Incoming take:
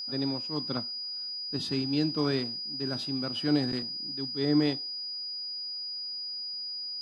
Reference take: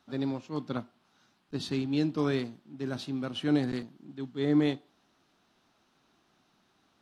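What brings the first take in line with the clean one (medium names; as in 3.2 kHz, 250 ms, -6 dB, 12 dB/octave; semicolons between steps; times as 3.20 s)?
band-stop 4.9 kHz, Q 30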